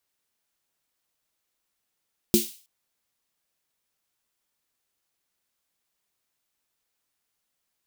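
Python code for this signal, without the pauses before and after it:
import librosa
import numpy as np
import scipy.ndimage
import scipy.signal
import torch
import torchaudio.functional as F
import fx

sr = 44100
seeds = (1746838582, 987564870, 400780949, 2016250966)

y = fx.drum_snare(sr, seeds[0], length_s=0.32, hz=220.0, second_hz=350.0, noise_db=-6.0, noise_from_hz=2900.0, decay_s=0.18, noise_decay_s=0.42)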